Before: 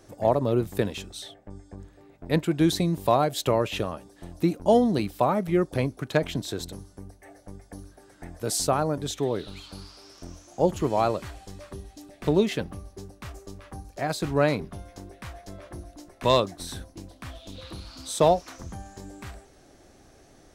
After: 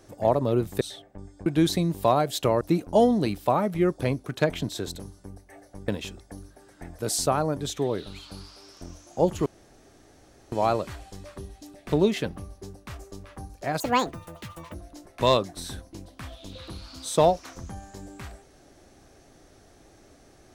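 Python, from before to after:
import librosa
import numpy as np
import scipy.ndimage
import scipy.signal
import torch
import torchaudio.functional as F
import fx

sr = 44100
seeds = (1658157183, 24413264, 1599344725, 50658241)

y = fx.edit(x, sr, fx.move(start_s=0.81, length_s=0.32, to_s=7.61),
    fx.cut(start_s=1.78, length_s=0.71),
    fx.cut(start_s=3.64, length_s=0.7),
    fx.insert_room_tone(at_s=10.87, length_s=1.06),
    fx.speed_span(start_s=14.15, length_s=1.62, speed=1.72), tone=tone)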